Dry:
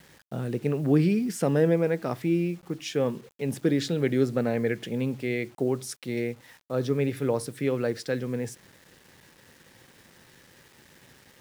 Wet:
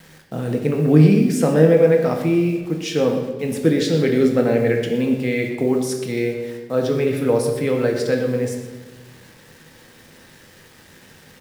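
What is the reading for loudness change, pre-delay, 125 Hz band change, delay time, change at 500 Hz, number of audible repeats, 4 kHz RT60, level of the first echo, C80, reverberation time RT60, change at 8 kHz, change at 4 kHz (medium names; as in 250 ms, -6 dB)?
+9.0 dB, 4 ms, +8.5 dB, 122 ms, +9.5 dB, 1, 1.0 s, -12.5 dB, 6.5 dB, 1.3 s, +7.0 dB, +7.5 dB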